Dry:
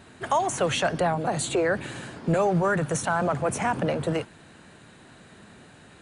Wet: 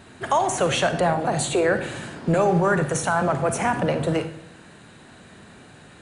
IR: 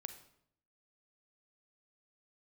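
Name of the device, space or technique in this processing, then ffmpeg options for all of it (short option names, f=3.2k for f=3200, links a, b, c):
bathroom: -filter_complex "[1:a]atrim=start_sample=2205[a];[0:a][a]afir=irnorm=-1:irlink=0,volume=7dB"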